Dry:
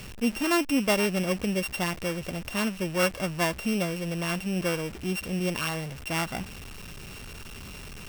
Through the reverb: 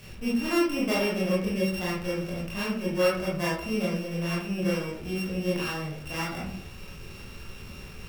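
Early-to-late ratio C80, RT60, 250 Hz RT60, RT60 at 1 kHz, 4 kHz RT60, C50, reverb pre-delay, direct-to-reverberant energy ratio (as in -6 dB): 8.0 dB, 0.60 s, 0.75 s, 0.55 s, 0.30 s, 3.0 dB, 20 ms, -7.0 dB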